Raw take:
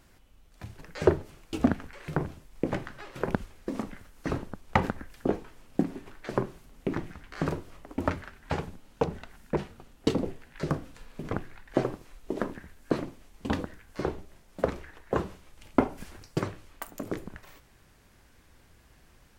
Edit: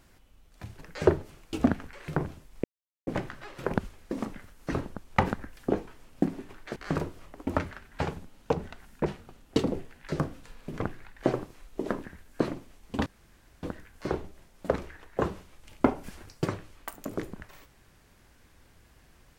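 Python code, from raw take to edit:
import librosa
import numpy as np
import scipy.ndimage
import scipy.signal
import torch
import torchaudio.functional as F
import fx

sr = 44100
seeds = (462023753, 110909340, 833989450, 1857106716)

y = fx.edit(x, sr, fx.insert_silence(at_s=2.64, length_s=0.43),
    fx.cut(start_s=6.33, length_s=0.94),
    fx.insert_room_tone(at_s=13.57, length_s=0.57), tone=tone)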